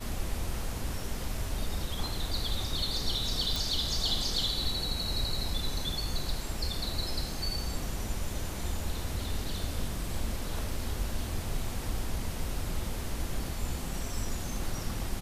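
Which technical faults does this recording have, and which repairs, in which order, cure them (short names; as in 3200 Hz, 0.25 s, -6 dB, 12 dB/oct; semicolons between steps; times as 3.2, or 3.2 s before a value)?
3.56 pop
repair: de-click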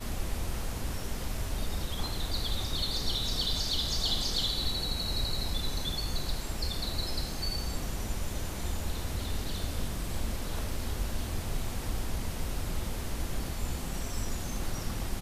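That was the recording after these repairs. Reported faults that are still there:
none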